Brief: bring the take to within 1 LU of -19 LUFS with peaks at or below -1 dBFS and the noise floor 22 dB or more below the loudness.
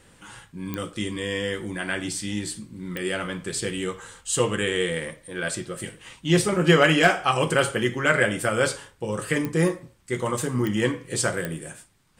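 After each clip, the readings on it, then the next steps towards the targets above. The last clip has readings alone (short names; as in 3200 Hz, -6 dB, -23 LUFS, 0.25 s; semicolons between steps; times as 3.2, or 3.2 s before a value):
clicks 5; loudness -24.5 LUFS; peak -5.0 dBFS; loudness target -19.0 LUFS
-> de-click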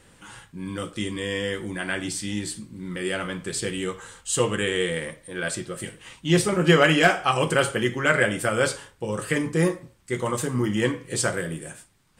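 clicks 0; loudness -24.5 LUFS; peak -5.0 dBFS; loudness target -19.0 LUFS
-> gain +5.5 dB; limiter -1 dBFS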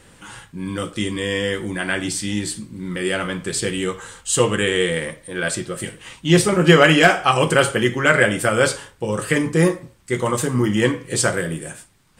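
loudness -19.5 LUFS; peak -1.0 dBFS; noise floor -51 dBFS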